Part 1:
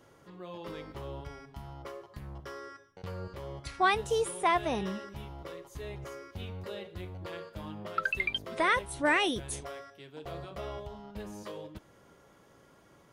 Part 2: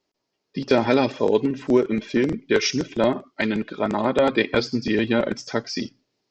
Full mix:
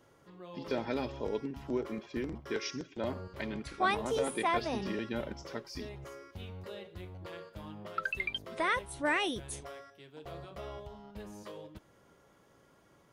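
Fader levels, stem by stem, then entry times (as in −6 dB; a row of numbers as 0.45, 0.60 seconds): −4.0, −16.0 decibels; 0.00, 0.00 seconds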